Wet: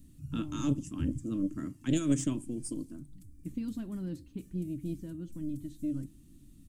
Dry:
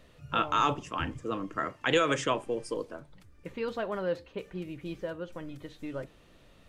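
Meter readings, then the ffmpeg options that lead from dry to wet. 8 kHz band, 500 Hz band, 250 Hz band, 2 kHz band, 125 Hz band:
+2.5 dB, −12.5 dB, +5.5 dB, −18.0 dB, +5.0 dB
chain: -af "firequalizer=gain_entry='entry(200,0);entry(290,4);entry(460,-29);entry(8300,3)':delay=0.05:min_phase=1,aeval=exprs='0.0841*(cos(1*acos(clip(val(0)/0.0841,-1,1)))-cos(1*PI/2))+0.0188*(cos(2*acos(clip(val(0)/0.0841,-1,1)))-cos(2*PI/2))':channel_layout=same,volume=4.5dB"

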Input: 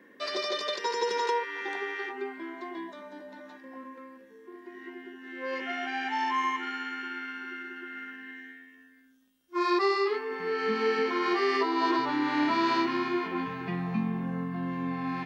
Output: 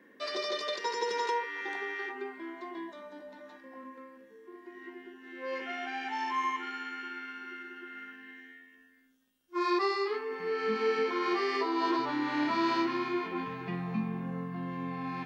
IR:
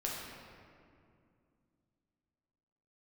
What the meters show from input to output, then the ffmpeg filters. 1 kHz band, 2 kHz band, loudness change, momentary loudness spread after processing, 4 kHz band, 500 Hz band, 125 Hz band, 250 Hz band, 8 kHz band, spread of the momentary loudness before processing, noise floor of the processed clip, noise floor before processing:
−3.0 dB, −3.5 dB, −3.0 dB, 19 LU, −3.5 dB, −3.0 dB, −3.5 dB, −3.5 dB, can't be measured, 19 LU, −60 dBFS, −56 dBFS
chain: -filter_complex "[0:a]asplit=2[link_01][link_02];[1:a]atrim=start_sample=2205,atrim=end_sample=3087[link_03];[link_02][link_03]afir=irnorm=-1:irlink=0,volume=-6dB[link_04];[link_01][link_04]amix=inputs=2:normalize=0,volume=-6dB"

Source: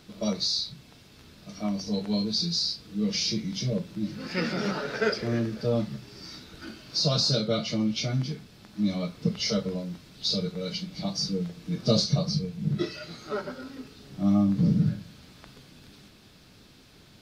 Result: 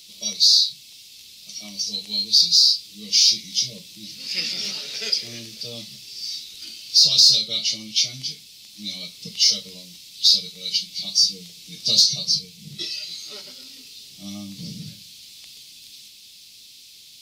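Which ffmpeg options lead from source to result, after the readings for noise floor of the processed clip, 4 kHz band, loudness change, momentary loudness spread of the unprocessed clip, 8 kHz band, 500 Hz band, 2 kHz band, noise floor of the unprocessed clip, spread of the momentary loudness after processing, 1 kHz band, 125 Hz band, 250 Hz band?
−46 dBFS, +13.0 dB, +10.0 dB, 17 LU, +14.5 dB, −14.0 dB, −1.0 dB, −54 dBFS, 22 LU, below −10 dB, −14.0 dB, −14.0 dB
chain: -af "aexciter=amount=15.9:drive=7.1:freq=2400,volume=-14dB"

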